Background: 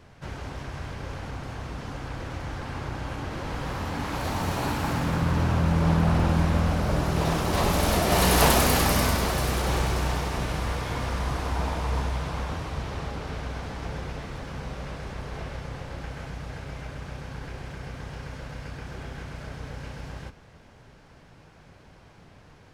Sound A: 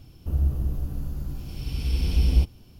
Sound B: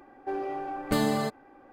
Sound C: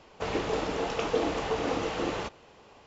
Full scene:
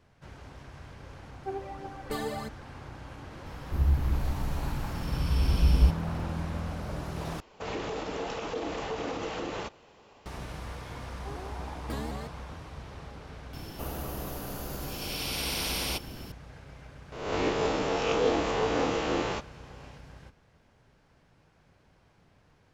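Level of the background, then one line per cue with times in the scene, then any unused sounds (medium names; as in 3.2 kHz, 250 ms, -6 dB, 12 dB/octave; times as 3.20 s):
background -11 dB
1.19 s: add B -9.5 dB + phaser 1.5 Hz, delay 2.9 ms, feedback 65%
3.46 s: add A -1.5 dB
7.40 s: replace with C -2 dB + peak limiter -23 dBFS
10.98 s: add B -12 dB + vibrato with a chosen wave saw up 5.3 Hz, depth 160 cents
13.53 s: add A -11.5 dB + spectrum-flattening compressor 4:1
17.12 s: add C -0.5 dB + reverse spectral sustain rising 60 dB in 0.86 s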